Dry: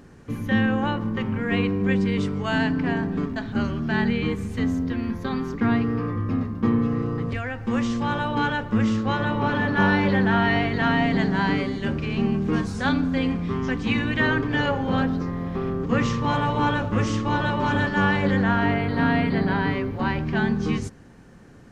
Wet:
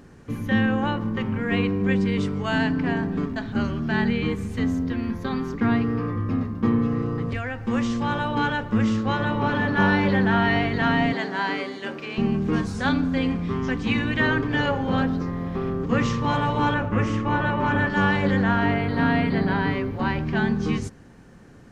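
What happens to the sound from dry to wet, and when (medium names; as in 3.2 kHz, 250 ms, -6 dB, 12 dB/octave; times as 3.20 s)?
11.13–12.18 s: high-pass 390 Hz
16.74–17.90 s: resonant high shelf 3 kHz -7 dB, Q 1.5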